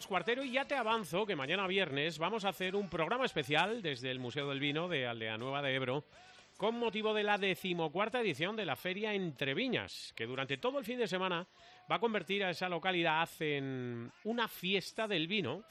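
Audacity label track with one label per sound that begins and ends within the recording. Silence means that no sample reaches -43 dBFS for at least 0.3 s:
6.600000	11.430000	sound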